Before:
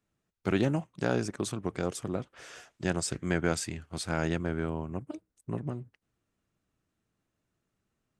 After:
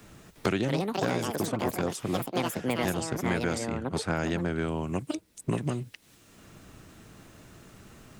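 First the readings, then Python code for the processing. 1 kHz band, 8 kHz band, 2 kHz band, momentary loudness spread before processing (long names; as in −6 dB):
+6.0 dB, 0.0 dB, +2.5 dB, 12 LU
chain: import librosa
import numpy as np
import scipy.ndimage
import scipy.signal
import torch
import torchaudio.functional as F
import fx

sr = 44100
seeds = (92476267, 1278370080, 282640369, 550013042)

y = fx.echo_pitch(x, sr, ms=357, semitones=6, count=2, db_per_echo=-3.0)
y = fx.band_squash(y, sr, depth_pct=100)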